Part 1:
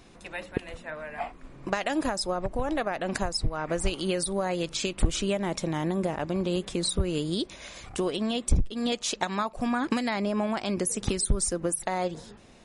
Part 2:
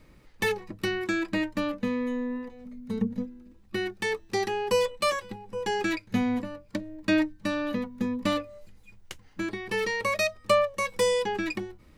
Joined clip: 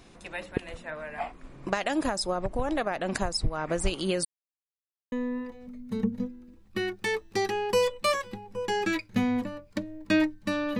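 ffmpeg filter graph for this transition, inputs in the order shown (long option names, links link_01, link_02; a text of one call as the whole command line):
ffmpeg -i cue0.wav -i cue1.wav -filter_complex "[0:a]apad=whole_dur=10.79,atrim=end=10.79,asplit=2[link_01][link_02];[link_01]atrim=end=4.25,asetpts=PTS-STARTPTS,afade=type=out:start_time=4.246:duration=0.004:curve=hsin[link_03];[link_02]atrim=start=4.25:end=5.12,asetpts=PTS-STARTPTS,volume=0[link_04];[1:a]atrim=start=2.1:end=7.77,asetpts=PTS-STARTPTS,afade=type=in:duration=0.004:curve=hsin[link_05];[link_03][link_04][link_05]concat=n=3:v=0:a=1" out.wav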